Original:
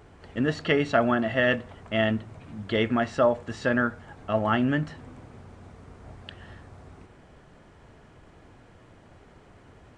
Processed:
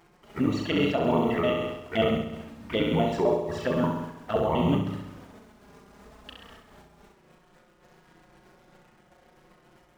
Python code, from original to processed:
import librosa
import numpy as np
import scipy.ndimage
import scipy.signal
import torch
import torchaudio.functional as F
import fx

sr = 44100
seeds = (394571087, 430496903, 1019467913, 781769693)

p1 = fx.pitch_trill(x, sr, semitones=-6.5, every_ms=65)
p2 = fx.low_shelf(p1, sr, hz=130.0, db=-10.5)
p3 = fx.quant_dither(p2, sr, seeds[0], bits=8, dither='none')
p4 = p2 + (p3 * 10.0 ** (-6.0 / 20.0))
p5 = fx.doubler(p4, sr, ms=36.0, db=-6.5)
p6 = fx.env_flanger(p5, sr, rest_ms=6.1, full_db=-20.5)
p7 = p6 + fx.room_flutter(p6, sr, wall_m=11.4, rt60_s=0.93, dry=0)
y = fx.am_noise(p7, sr, seeds[1], hz=5.7, depth_pct=60)